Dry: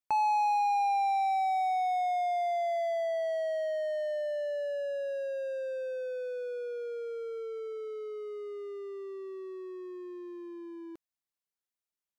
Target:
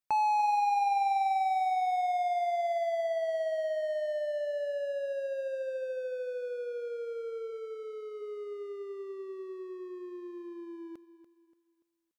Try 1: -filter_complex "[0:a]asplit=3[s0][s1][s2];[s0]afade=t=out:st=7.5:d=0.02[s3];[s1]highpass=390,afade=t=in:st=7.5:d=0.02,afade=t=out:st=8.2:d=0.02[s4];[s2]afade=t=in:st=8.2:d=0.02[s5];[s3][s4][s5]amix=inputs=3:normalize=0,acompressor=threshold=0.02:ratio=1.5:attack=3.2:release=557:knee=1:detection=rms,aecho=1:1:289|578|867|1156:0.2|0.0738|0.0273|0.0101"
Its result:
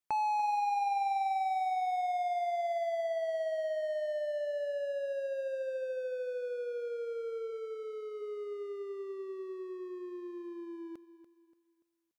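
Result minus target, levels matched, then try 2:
compression: peak gain reduction +4 dB
-filter_complex "[0:a]asplit=3[s0][s1][s2];[s0]afade=t=out:st=7.5:d=0.02[s3];[s1]highpass=390,afade=t=in:st=7.5:d=0.02,afade=t=out:st=8.2:d=0.02[s4];[s2]afade=t=in:st=8.2:d=0.02[s5];[s3][s4][s5]amix=inputs=3:normalize=0,aecho=1:1:289|578|867|1156:0.2|0.0738|0.0273|0.0101"

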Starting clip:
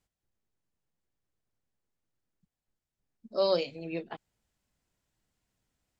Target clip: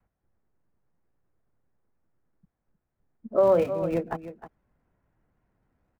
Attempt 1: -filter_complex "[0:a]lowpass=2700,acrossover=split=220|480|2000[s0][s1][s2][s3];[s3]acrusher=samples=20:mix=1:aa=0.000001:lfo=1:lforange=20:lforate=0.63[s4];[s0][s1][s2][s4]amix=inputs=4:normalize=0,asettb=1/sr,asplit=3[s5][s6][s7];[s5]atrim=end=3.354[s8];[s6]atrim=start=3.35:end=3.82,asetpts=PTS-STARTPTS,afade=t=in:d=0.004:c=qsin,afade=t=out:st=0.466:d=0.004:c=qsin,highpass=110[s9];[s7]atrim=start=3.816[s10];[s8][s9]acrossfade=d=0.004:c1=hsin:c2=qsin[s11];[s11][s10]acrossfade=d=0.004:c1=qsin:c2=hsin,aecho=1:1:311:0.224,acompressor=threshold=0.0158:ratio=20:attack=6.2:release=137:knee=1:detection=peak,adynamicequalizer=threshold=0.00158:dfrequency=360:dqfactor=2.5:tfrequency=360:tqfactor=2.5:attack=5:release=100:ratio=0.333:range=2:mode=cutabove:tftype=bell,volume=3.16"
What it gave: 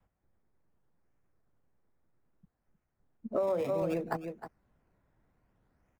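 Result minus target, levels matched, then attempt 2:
decimation with a swept rate: distortion -24 dB; compression: peak gain reduction +11 dB
-filter_complex "[0:a]lowpass=2700,acrossover=split=220|480|2000[s0][s1][s2][s3];[s3]acrusher=samples=76:mix=1:aa=0.000001:lfo=1:lforange=76:lforate=0.63[s4];[s0][s1][s2][s4]amix=inputs=4:normalize=0,asettb=1/sr,asplit=3[s5][s6][s7];[s5]atrim=end=3.354[s8];[s6]atrim=start=3.35:end=3.82,asetpts=PTS-STARTPTS,afade=t=in:d=0.004:c=qsin,afade=t=out:st=0.466:d=0.004:c=qsin,highpass=110[s9];[s7]atrim=start=3.816[s10];[s8][s9]acrossfade=d=0.004:c1=hsin:c2=qsin[s11];[s11][s10]acrossfade=d=0.004:c1=qsin:c2=hsin,aecho=1:1:311:0.224,acompressor=threshold=0.0596:ratio=20:attack=6.2:release=137:knee=1:detection=peak,adynamicequalizer=threshold=0.00158:dfrequency=360:dqfactor=2.5:tfrequency=360:tqfactor=2.5:attack=5:release=100:ratio=0.333:range=2:mode=cutabove:tftype=bell,volume=3.16"

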